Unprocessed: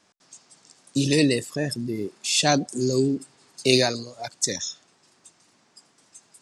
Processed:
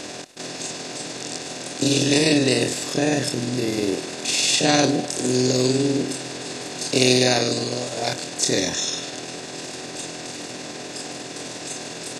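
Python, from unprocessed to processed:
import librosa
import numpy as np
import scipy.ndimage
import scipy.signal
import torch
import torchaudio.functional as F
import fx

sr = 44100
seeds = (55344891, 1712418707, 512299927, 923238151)

y = fx.bin_compress(x, sr, power=0.4)
y = fx.stretch_grains(y, sr, factor=1.9, grain_ms=101.0)
y = y * librosa.db_to_amplitude(-1.0)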